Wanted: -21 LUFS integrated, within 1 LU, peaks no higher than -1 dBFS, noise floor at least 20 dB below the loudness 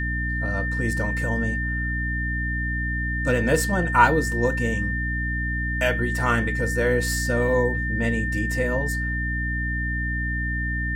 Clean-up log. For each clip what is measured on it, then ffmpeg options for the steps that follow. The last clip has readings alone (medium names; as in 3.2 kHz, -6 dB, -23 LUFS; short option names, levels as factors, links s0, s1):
hum 60 Hz; highest harmonic 300 Hz; hum level -25 dBFS; steady tone 1.8 kHz; tone level -27 dBFS; loudness -23.5 LUFS; peak level -4.0 dBFS; loudness target -21.0 LUFS
-> -af "bandreject=f=60:t=h:w=4,bandreject=f=120:t=h:w=4,bandreject=f=180:t=h:w=4,bandreject=f=240:t=h:w=4,bandreject=f=300:t=h:w=4"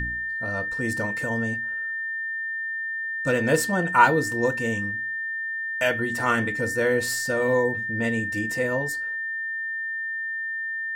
hum not found; steady tone 1.8 kHz; tone level -27 dBFS
-> -af "bandreject=f=1800:w=30"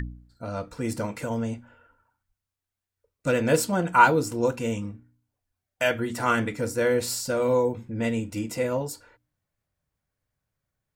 steady tone not found; loudness -25.5 LUFS; peak level -4.5 dBFS; loudness target -21.0 LUFS
-> -af "volume=1.68,alimiter=limit=0.891:level=0:latency=1"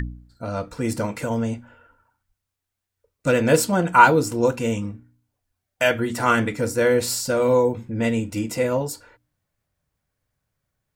loudness -21.0 LUFS; peak level -1.0 dBFS; noise floor -82 dBFS